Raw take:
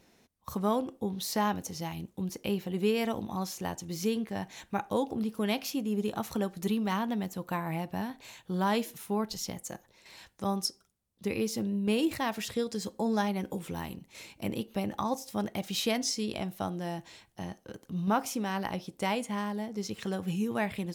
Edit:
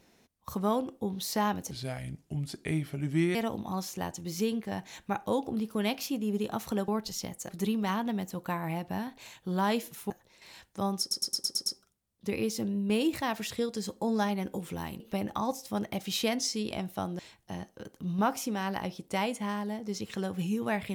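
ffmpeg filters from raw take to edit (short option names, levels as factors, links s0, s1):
-filter_complex "[0:a]asplit=14[s0][s1][s2][s3][s4][s5][s6][s7][s8][s9][s10][s11][s12][s13];[s0]atrim=end=1.714[s14];[s1]atrim=start=1.71:end=2.99,asetpts=PTS-STARTPTS,asetrate=34398,aresample=44100,atrim=end_sample=72369,asetpts=PTS-STARTPTS[s15];[s2]atrim=start=2.986:end=6.522[s16];[s3]atrim=start=9.128:end=9.742[s17];[s4]atrim=start=6.518:end=9.132[s18];[s5]atrim=start=9.738:end=10.752[s19];[s6]atrim=start=10.638:end=10.752[s20];[s7]atrim=start=10.638:end=10.752[s21];[s8]atrim=start=10.638:end=10.752[s22];[s9]atrim=start=10.638:end=10.752[s23];[s10]atrim=start=10.638:end=10.752[s24];[s11]atrim=start=10.638:end=13.982[s25];[s12]atrim=start=14.628:end=16.822[s26];[s13]atrim=start=17.078[s27];[s14][s15]acrossfade=d=0.004:c1=hsin:c2=hsin[s28];[s28][s16]acrossfade=d=0.004:c1=hsin:c2=hsin[s29];[s29][s17]acrossfade=d=0.004:c1=hsin:c2=hsin[s30];[s30][s18]acrossfade=d=0.004:c1=hsin:c2=hsin[s31];[s31][s19]acrossfade=d=0.004:c1=hsin:c2=hsin[s32];[s32][s20]acrossfade=d=0.004:c1=hsin:c2=hsin[s33];[s33][s21]acrossfade=d=0.004:c1=hsin:c2=hsin[s34];[s34][s22]acrossfade=d=0.004:c1=hsin:c2=hsin[s35];[s35][s23]acrossfade=d=0.004:c1=hsin:c2=hsin[s36];[s36][s24]acrossfade=d=0.004:c1=hsin:c2=hsin[s37];[s37][s25]acrossfade=d=0.004:c1=hsin:c2=hsin[s38];[s38][s26]acrossfade=d=0.004:c1=hsin:c2=hsin[s39];[s39][s27]acrossfade=d=0.004:c1=hsin:c2=hsin"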